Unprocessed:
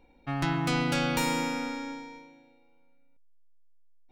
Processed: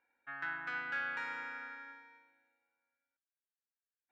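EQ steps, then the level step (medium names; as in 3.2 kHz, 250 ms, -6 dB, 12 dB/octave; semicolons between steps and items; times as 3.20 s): band-pass filter 1.6 kHz, Q 8.6; distance through air 66 m; +5.0 dB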